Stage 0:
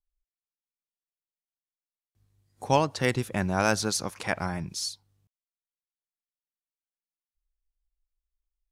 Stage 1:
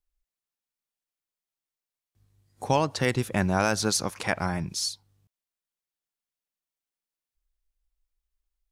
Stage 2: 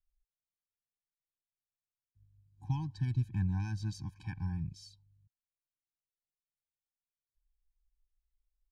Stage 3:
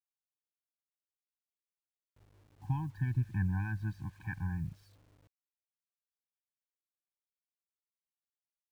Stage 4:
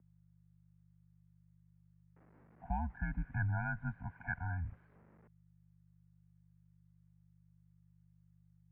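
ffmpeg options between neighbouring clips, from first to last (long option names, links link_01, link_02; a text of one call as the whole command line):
ffmpeg -i in.wav -af "alimiter=limit=-14dB:level=0:latency=1:release=162,volume=3dB" out.wav
ffmpeg -i in.wav -af "firequalizer=gain_entry='entry(120,0);entry(210,-13);entry(440,-21);entry(4100,-19);entry(10000,-29)':delay=0.05:min_phase=1,afftfilt=real='re*eq(mod(floor(b*sr/1024/370),2),0)':imag='im*eq(mod(floor(b*sr/1024/370),2),0)':win_size=1024:overlap=0.75" out.wav
ffmpeg -i in.wav -af "lowpass=frequency=1700:width_type=q:width=2.9,acrusher=bits=10:mix=0:aa=0.000001" out.wav
ffmpeg -i in.wav -af "aeval=exprs='val(0)+0.00112*(sin(2*PI*50*n/s)+sin(2*PI*2*50*n/s)/2+sin(2*PI*3*50*n/s)/3+sin(2*PI*4*50*n/s)/4+sin(2*PI*5*50*n/s)/5)':channel_layout=same,highpass=frequency=180:width_type=q:width=0.5412,highpass=frequency=180:width_type=q:width=1.307,lowpass=frequency=2100:width_type=q:width=0.5176,lowpass=frequency=2100:width_type=q:width=0.7071,lowpass=frequency=2100:width_type=q:width=1.932,afreqshift=-82,volume=5dB" out.wav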